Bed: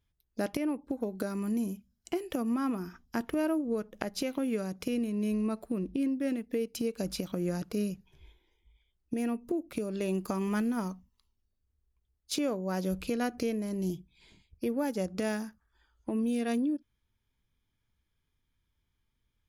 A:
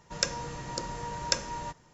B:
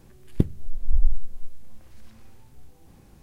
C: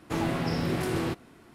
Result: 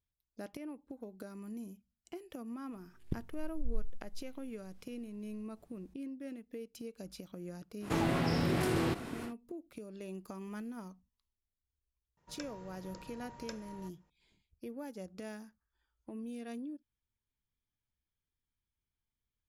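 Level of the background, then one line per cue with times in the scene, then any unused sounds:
bed -13 dB
2.72 s: add B -16.5 dB
7.80 s: add C -3.5 dB, fades 0.10 s + level flattener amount 50%
12.17 s: add A -15 dB + treble shelf 4.3 kHz -11 dB

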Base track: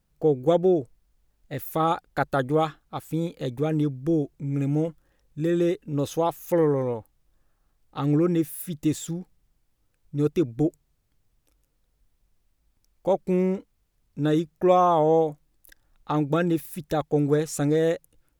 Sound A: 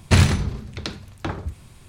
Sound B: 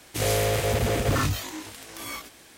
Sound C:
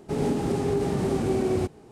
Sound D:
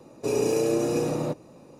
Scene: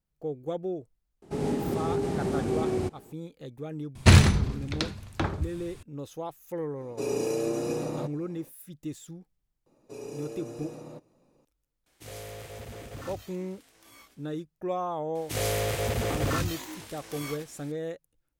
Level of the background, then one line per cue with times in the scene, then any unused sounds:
base track -12.5 dB
1.22 s: add C -3.5 dB
3.95 s: add A -0.5 dB
6.74 s: add D -5 dB, fades 0.10 s
9.66 s: add D -16 dB
11.86 s: add B -18 dB
15.15 s: add B -4.5 dB

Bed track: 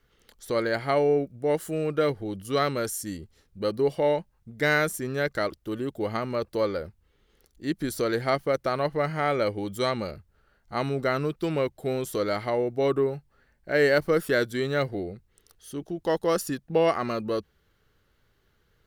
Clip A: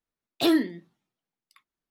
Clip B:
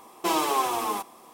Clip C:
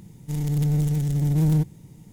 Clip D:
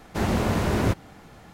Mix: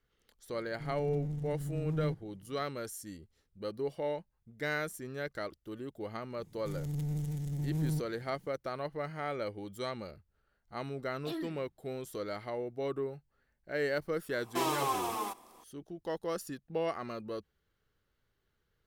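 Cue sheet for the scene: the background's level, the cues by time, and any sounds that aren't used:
bed track -11.5 dB
0.51 s: add C -15 dB + low-pass 1.8 kHz 6 dB/octave
6.37 s: add C -13 dB
10.85 s: add A -18 dB
14.31 s: add B -7.5 dB
not used: D

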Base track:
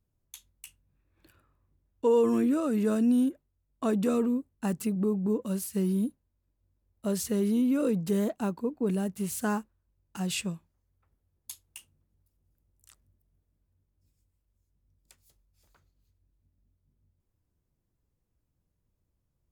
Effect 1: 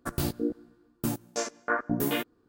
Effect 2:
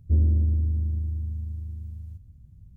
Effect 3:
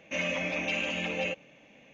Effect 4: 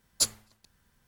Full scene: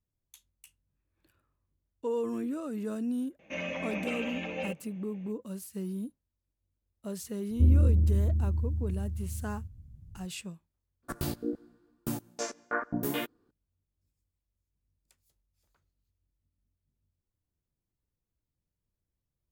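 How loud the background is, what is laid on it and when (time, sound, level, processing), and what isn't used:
base track -8.5 dB
3.39 s: add 3 -2.5 dB + treble shelf 2.6 kHz -9.5 dB
7.50 s: add 2 -1 dB
11.03 s: replace with 1 -4 dB
not used: 4

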